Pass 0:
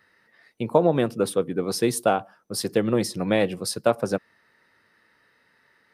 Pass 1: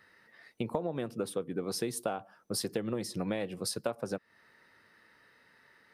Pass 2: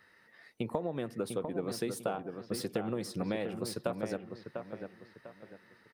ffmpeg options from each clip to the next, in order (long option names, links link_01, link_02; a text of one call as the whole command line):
ffmpeg -i in.wav -af "acompressor=threshold=-31dB:ratio=6" out.wav
ffmpeg -i in.wav -filter_complex "[0:a]acrossover=split=3200[link_01][link_02];[link_01]aecho=1:1:698|1396|2094|2792:0.473|0.156|0.0515|0.017[link_03];[link_02]asoftclip=type=tanh:threshold=-38.5dB[link_04];[link_03][link_04]amix=inputs=2:normalize=0,volume=-1dB" out.wav